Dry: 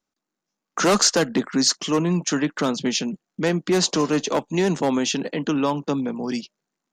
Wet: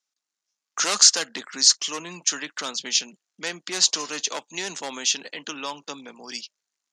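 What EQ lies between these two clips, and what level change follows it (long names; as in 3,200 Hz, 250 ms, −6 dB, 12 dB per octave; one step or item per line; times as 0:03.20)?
meter weighting curve ITU-R 468
−7.5 dB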